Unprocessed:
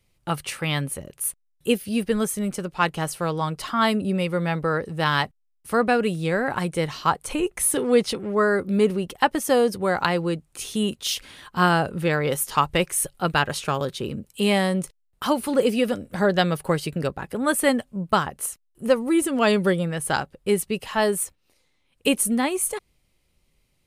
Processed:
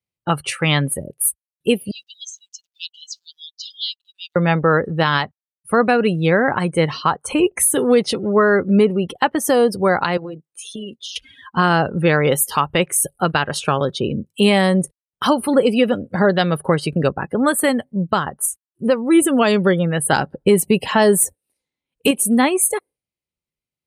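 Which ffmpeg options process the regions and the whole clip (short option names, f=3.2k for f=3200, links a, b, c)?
-filter_complex "[0:a]asettb=1/sr,asplit=3[a][b][c];[a]atrim=end=1.914[d];[b]atrim=start=1.91:end=4.36,asetpts=PTS-STARTPTS,afade=t=in:d=0.004:c=qsin,afade=t=out:st=2.446:d=0.004:c=qsin,asuperpass=centerf=4800:order=8:qfactor=1.2,acrusher=bits=8:mix=0:aa=0.5[e];[c]atrim=start=4.356[f];[d][e]acrossfade=d=0.004:c1=hsin:c2=qsin[g];[g][f]acrossfade=d=0.004:c1=qsin:c2=hsin,asettb=1/sr,asplit=3[h][i][j];[h]atrim=end=10.174[k];[i]atrim=start=10.17:end=11.16,asetpts=PTS-STARTPTS,afade=t=in:d=0.004:c=qsin,afade=t=out:st=0.986:d=0.004:c=qsin,highpass=f=270:p=1,tremolo=f=190:d=0.519,acompressor=threshold=-33dB:ratio=12:attack=3.2:release=140:knee=1:detection=peak[l];[j]atrim=start=11.156[m];[k][l]acrossfade=d=0.004:c1=hsin:c2=qsin[n];[n][m]acrossfade=d=0.004:c1=qsin:c2=hsin,asettb=1/sr,asplit=3[o][p][q];[o]atrim=end=20.124[r];[p]atrim=start=20.12:end=22.11,asetpts=PTS-STARTPTS,afade=t=in:d=0.004:c=qsin,afade=t=out:st=1.986:d=0.004:c=qsin,equalizer=f=220:w=0.58:g=3.5,bandreject=f=1.2k:w=11,acontrast=35[s];[q]atrim=start=22.106[t];[r][s]acrossfade=d=0.004:c1=hsin:c2=qsin[u];[u][t]acrossfade=d=0.004:c1=qsin:c2=hsin,afftdn=nr=29:nf=-39,highpass=85,alimiter=limit=-13.5dB:level=0:latency=1:release=294,volume=8.5dB"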